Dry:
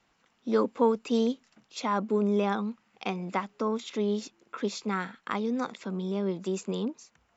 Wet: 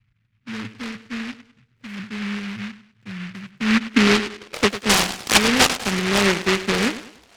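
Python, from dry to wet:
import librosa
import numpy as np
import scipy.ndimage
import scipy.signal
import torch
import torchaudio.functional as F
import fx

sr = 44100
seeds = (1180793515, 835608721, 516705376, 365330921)

p1 = fx.filter_sweep_lowpass(x, sr, from_hz=110.0, to_hz=770.0, start_s=3.35, end_s=4.74, q=7.7)
p2 = p1 + fx.echo_thinned(p1, sr, ms=100, feedback_pct=45, hz=220.0, wet_db=-11.5, dry=0)
p3 = fx.noise_mod_delay(p2, sr, seeds[0], noise_hz=1900.0, depth_ms=0.35)
y = F.gain(torch.from_numpy(p3), 8.5).numpy()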